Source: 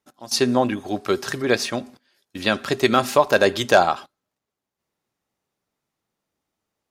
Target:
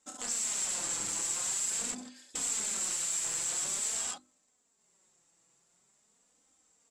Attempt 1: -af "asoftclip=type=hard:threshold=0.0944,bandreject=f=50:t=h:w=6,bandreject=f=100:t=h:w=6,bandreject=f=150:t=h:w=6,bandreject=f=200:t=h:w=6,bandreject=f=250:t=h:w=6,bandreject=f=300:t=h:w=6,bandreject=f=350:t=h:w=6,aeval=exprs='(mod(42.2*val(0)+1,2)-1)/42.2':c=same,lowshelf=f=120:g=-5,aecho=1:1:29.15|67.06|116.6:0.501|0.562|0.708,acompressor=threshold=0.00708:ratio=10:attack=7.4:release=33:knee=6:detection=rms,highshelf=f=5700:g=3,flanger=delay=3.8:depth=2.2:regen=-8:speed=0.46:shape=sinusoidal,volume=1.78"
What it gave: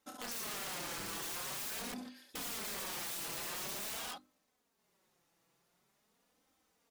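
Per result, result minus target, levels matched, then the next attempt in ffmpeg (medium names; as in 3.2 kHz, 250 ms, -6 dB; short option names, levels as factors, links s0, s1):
8 kHz band -5.5 dB; hard clipper: distortion +8 dB
-af "asoftclip=type=hard:threshold=0.0944,bandreject=f=50:t=h:w=6,bandreject=f=100:t=h:w=6,bandreject=f=150:t=h:w=6,bandreject=f=200:t=h:w=6,bandreject=f=250:t=h:w=6,bandreject=f=300:t=h:w=6,bandreject=f=350:t=h:w=6,aeval=exprs='(mod(42.2*val(0)+1,2)-1)/42.2':c=same,lowshelf=f=120:g=-5,aecho=1:1:29.15|67.06|116.6:0.501|0.562|0.708,acompressor=threshold=0.00708:ratio=10:attack=7.4:release=33:knee=6:detection=rms,lowpass=f=7600:t=q:w=13,highshelf=f=5700:g=3,flanger=delay=3.8:depth=2.2:regen=-8:speed=0.46:shape=sinusoidal,volume=1.78"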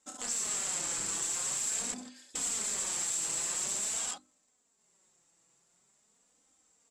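hard clipper: distortion +8 dB
-af "asoftclip=type=hard:threshold=0.282,bandreject=f=50:t=h:w=6,bandreject=f=100:t=h:w=6,bandreject=f=150:t=h:w=6,bandreject=f=200:t=h:w=6,bandreject=f=250:t=h:w=6,bandreject=f=300:t=h:w=6,bandreject=f=350:t=h:w=6,aeval=exprs='(mod(42.2*val(0)+1,2)-1)/42.2':c=same,lowshelf=f=120:g=-5,aecho=1:1:29.15|67.06|116.6:0.501|0.562|0.708,acompressor=threshold=0.00708:ratio=10:attack=7.4:release=33:knee=6:detection=rms,lowpass=f=7600:t=q:w=13,highshelf=f=5700:g=3,flanger=delay=3.8:depth=2.2:regen=-8:speed=0.46:shape=sinusoidal,volume=1.78"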